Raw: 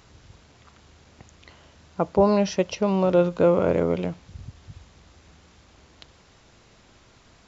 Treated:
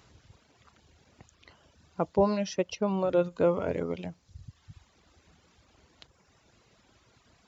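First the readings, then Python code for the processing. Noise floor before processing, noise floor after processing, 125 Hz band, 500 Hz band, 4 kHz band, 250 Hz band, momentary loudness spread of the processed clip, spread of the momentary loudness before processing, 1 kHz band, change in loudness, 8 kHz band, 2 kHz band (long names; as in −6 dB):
−56 dBFS, −66 dBFS, −8.0 dB, −6.5 dB, −6.0 dB, −7.5 dB, 11 LU, 12 LU, −6.5 dB, −7.0 dB, can't be measured, −6.0 dB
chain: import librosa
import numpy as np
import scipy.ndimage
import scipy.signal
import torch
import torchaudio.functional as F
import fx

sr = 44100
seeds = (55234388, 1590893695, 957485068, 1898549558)

y = scipy.signal.sosfilt(scipy.signal.butter(2, 47.0, 'highpass', fs=sr, output='sos'), x)
y = fx.dereverb_blind(y, sr, rt60_s=1.2)
y = y * librosa.db_to_amplitude(-5.0)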